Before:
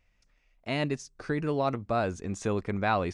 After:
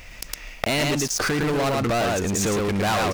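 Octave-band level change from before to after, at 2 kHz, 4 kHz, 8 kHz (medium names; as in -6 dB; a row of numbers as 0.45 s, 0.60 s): +9.5 dB, +14.5 dB, +20.0 dB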